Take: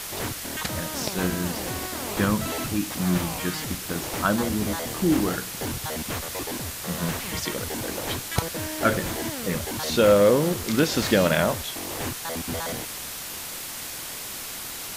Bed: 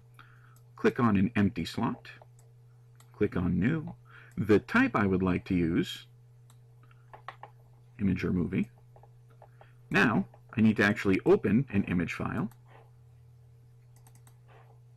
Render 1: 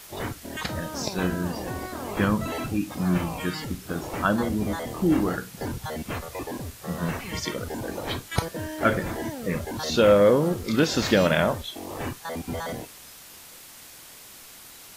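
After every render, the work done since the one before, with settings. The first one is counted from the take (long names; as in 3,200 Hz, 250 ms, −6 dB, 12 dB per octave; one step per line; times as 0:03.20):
noise reduction from a noise print 11 dB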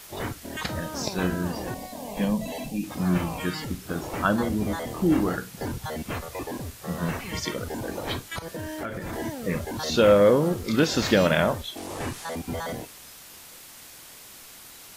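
0:01.74–0:02.84: phaser with its sweep stopped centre 360 Hz, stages 6
0:08.19–0:09.13: downward compressor 8 to 1, threshold −29 dBFS
0:11.77–0:12.35: linear delta modulator 64 kbit/s, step −33.5 dBFS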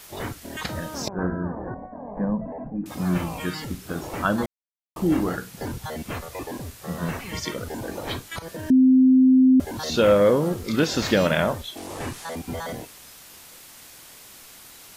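0:01.08–0:02.86: Butterworth low-pass 1,600 Hz 48 dB per octave
0:04.46–0:04.96: silence
0:08.70–0:09.60: beep over 259 Hz −11.5 dBFS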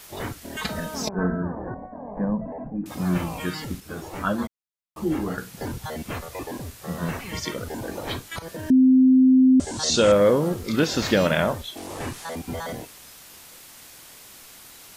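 0:00.56–0:01.42: comb filter 4.6 ms
0:03.80–0:05.38: string-ensemble chorus
0:09.06–0:10.12: drawn EQ curve 2,400 Hz 0 dB, 8,200 Hz +14 dB, 13,000 Hz −19 dB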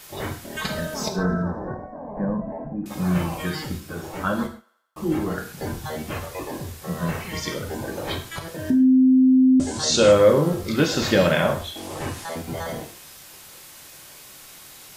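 feedback echo with a high-pass in the loop 85 ms, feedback 60%, high-pass 510 Hz, level −23.5 dB
reverb whose tail is shaped and stops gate 170 ms falling, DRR 3 dB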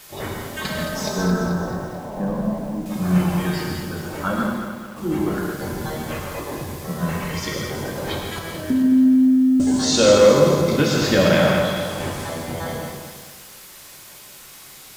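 reverb whose tail is shaped and stops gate 180 ms rising, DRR 2.5 dB
feedback echo at a low word length 217 ms, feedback 55%, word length 7 bits, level −7 dB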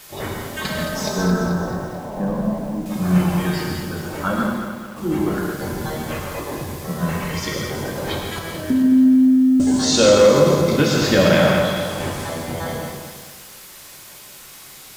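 level +1.5 dB
brickwall limiter −3 dBFS, peak gain reduction 2 dB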